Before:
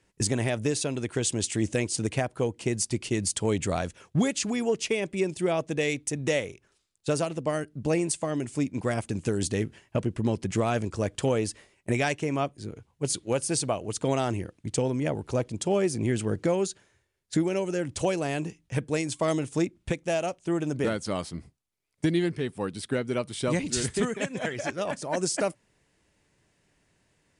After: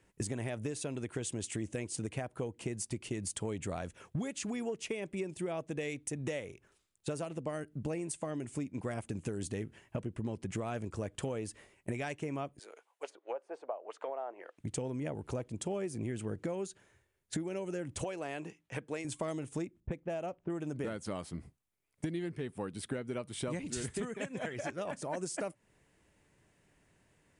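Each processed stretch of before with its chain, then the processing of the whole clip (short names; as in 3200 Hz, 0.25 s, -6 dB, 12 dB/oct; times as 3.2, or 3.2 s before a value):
12.59–14.58 HPF 570 Hz 24 dB/oct + treble ducked by the level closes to 780 Hz, closed at -29 dBFS
18.04–19.05 HPF 510 Hz 6 dB/oct + high shelf 7400 Hz -11 dB
19.8–20.5 low-pass opened by the level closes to 460 Hz, open at -22.5 dBFS + high shelf 2100 Hz -8.5 dB
whole clip: bell 4800 Hz -6.5 dB 1.1 oct; compressor 4:1, threshold -36 dBFS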